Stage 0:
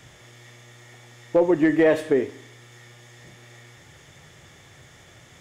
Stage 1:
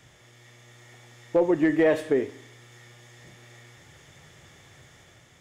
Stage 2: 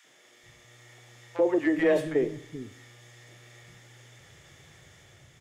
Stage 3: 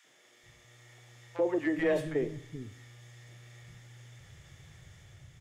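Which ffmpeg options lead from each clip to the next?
-af "dynaudnorm=f=250:g=5:m=3.5dB,volume=-6dB"
-filter_complex "[0:a]acrossover=split=230|980[a][b][c];[b]adelay=40[d];[a]adelay=430[e];[e][d][c]amix=inputs=3:normalize=0,volume=-1dB"
-af "asubboost=boost=3.5:cutoff=170,volume=-4dB"

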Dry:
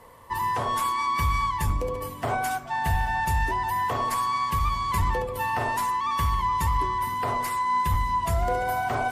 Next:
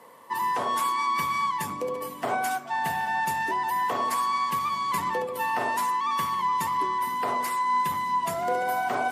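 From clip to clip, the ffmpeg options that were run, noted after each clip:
-af "highpass=f=180:w=0.5412,highpass=f=180:w=1.3066"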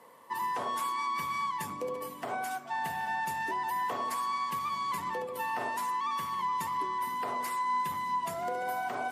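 -af "alimiter=limit=-19.5dB:level=0:latency=1:release=245,volume=-5dB"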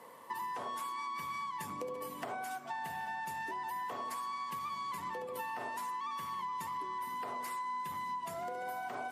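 -af "acompressor=threshold=-40dB:ratio=5,volume=2dB"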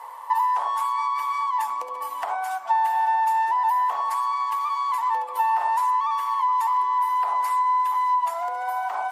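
-af "highpass=f=890:t=q:w=4.9,volume=6.5dB"

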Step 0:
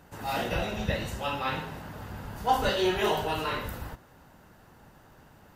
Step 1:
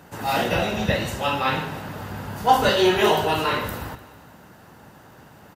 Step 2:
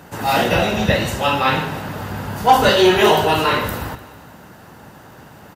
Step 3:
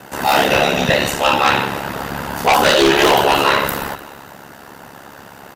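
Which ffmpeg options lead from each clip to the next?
-af "highpass=89,aecho=1:1:150|300|450|600|750:0.119|0.0666|0.0373|0.0209|0.0117,volume=8dB"
-af "asoftclip=type=tanh:threshold=-6.5dB,volume=6dB"
-af "highpass=f=320:p=1,aeval=exprs='val(0)*sin(2*PI*35*n/s)':c=same,aeval=exprs='0.794*sin(PI/2*3.16*val(0)/0.794)':c=same,volume=-5dB"

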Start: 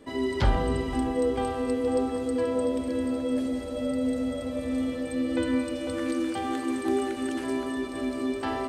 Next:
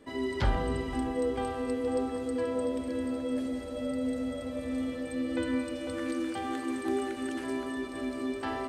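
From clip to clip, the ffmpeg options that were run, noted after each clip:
-af "equalizer=f=1.7k:w=1.5:g=2.5,volume=-4.5dB"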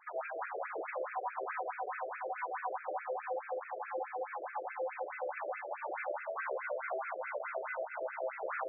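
-af "acompressor=threshold=-31dB:ratio=6,aeval=exprs='abs(val(0))':c=same,afftfilt=real='re*between(b*sr/1024,480*pow(1900/480,0.5+0.5*sin(2*PI*4.7*pts/sr))/1.41,480*pow(1900/480,0.5+0.5*sin(2*PI*4.7*pts/sr))*1.41)':imag='im*between(b*sr/1024,480*pow(1900/480,0.5+0.5*sin(2*PI*4.7*pts/sr))/1.41,480*pow(1900/480,0.5+0.5*sin(2*PI*4.7*pts/sr))*1.41)':win_size=1024:overlap=0.75,volume=7.5dB"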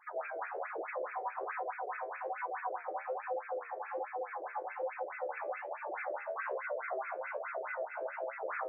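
-af "flanger=delay=8.1:depth=6.2:regen=-60:speed=1.2:shape=sinusoidal,volume=4dB"

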